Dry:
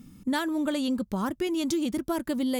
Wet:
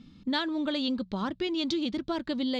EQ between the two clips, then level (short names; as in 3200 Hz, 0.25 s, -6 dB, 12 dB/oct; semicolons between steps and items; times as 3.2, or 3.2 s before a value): ladder low-pass 4500 Hz, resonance 60%; notches 60/120/180 Hz; +8.0 dB